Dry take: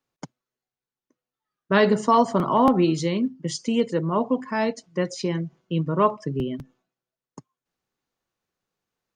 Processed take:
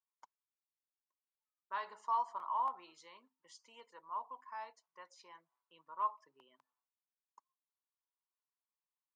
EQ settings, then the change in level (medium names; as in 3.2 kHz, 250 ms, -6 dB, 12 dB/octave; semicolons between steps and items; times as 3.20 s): band-pass filter 980 Hz, Q 6.1; differentiator; +7.0 dB